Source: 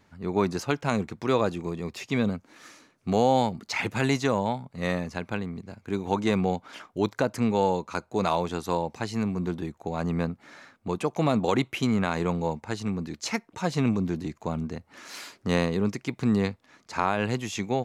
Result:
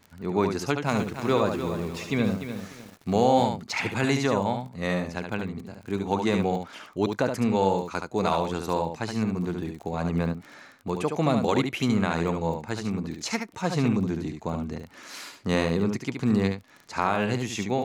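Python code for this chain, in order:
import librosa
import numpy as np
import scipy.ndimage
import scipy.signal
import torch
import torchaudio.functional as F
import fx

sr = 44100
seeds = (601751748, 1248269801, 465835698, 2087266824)

y = fx.dmg_crackle(x, sr, seeds[0], per_s=13.0, level_db=-35.0)
y = y + 10.0 ** (-6.0 / 20.0) * np.pad(y, (int(72 * sr / 1000.0), 0))[:len(y)]
y = fx.echo_crushed(y, sr, ms=297, feedback_pct=35, bits=7, wet_db=-9.5, at=(0.57, 3.44))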